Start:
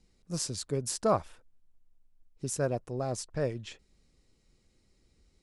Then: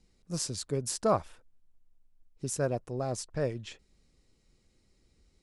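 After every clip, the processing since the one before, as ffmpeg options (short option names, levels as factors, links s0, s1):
-af anull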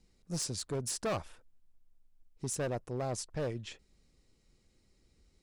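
-af "asoftclip=type=hard:threshold=0.0355,volume=0.891"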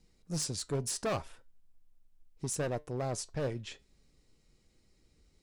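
-af "flanger=delay=6.3:depth=1.1:regen=81:speed=0.42:shape=sinusoidal,volume=1.88"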